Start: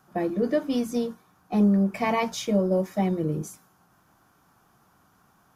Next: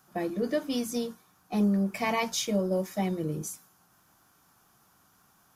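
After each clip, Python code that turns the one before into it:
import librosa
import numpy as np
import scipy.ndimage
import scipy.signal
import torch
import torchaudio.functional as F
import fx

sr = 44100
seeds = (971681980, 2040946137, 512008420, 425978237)

y = fx.high_shelf(x, sr, hz=2600.0, db=10.5)
y = y * 10.0 ** (-5.0 / 20.0)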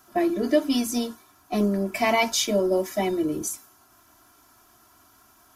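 y = x + 0.92 * np.pad(x, (int(3.0 * sr / 1000.0), 0))[:len(x)]
y = y * 10.0 ** (4.5 / 20.0)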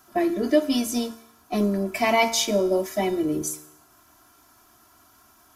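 y = fx.comb_fb(x, sr, f0_hz=76.0, decay_s=0.79, harmonics='all', damping=0.0, mix_pct=50)
y = y * 10.0 ** (5.5 / 20.0)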